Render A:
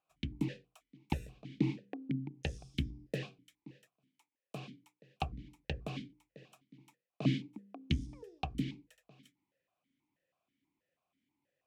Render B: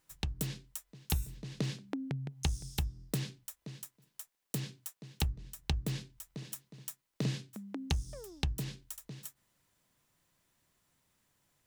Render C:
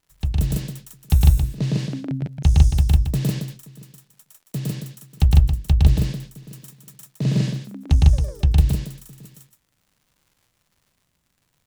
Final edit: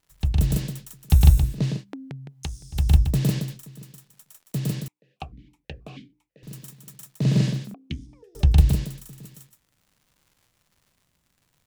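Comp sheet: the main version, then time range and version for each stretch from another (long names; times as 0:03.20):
C
0:01.73–0:02.81: punch in from B, crossfade 0.24 s
0:04.88–0:06.43: punch in from A
0:07.74–0:08.35: punch in from A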